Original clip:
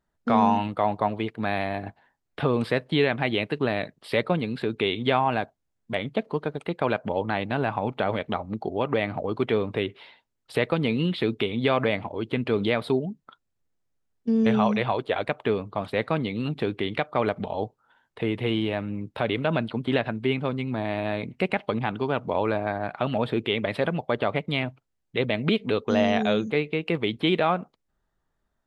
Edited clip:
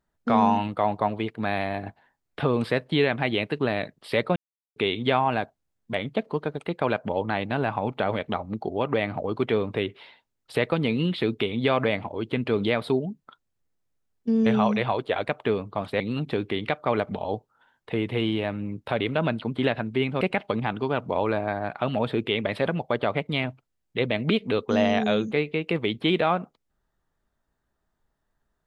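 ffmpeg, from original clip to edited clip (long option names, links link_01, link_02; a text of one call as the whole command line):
ffmpeg -i in.wav -filter_complex "[0:a]asplit=5[link_01][link_02][link_03][link_04][link_05];[link_01]atrim=end=4.36,asetpts=PTS-STARTPTS,afade=type=out:start_time=4.356:duration=0.004:curve=hsin[link_06];[link_02]atrim=start=4.36:end=4.76,asetpts=PTS-STARTPTS,volume=0[link_07];[link_03]atrim=start=4.76:end=16.002,asetpts=PTS-STARTPTS,afade=type=in:duration=0.004:curve=hsin[link_08];[link_04]atrim=start=16.288:end=20.502[link_09];[link_05]atrim=start=21.398[link_10];[link_06][link_07][link_08]concat=n=3:v=0:a=1[link_11];[link_11][link_09]acrossfade=duration=0.004:curve1=hsin:curve2=hsin[link_12];[link_12][link_10]acrossfade=duration=0.004:curve1=hsin:curve2=hsin" out.wav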